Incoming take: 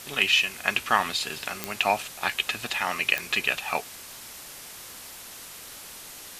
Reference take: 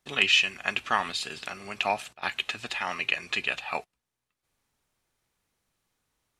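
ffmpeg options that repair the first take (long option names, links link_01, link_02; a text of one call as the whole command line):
ffmpeg -i in.wav -af "adeclick=threshold=4,afwtdn=0.0089,asetnsamples=nb_out_samples=441:pad=0,asendcmd='0.63 volume volume -3.5dB',volume=0dB" out.wav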